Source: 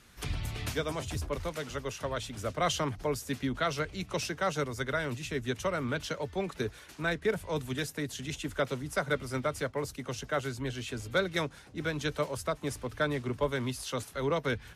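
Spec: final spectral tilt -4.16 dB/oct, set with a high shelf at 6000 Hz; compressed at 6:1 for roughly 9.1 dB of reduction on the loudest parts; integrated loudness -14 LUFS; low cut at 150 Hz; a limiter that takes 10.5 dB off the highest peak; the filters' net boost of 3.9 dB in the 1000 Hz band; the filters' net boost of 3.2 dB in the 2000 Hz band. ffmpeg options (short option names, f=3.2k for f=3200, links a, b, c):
-af "highpass=150,equalizer=f=1k:t=o:g=4.5,equalizer=f=2k:t=o:g=3,highshelf=f=6k:g=-6,acompressor=threshold=-32dB:ratio=6,volume=26.5dB,alimiter=limit=-3dB:level=0:latency=1"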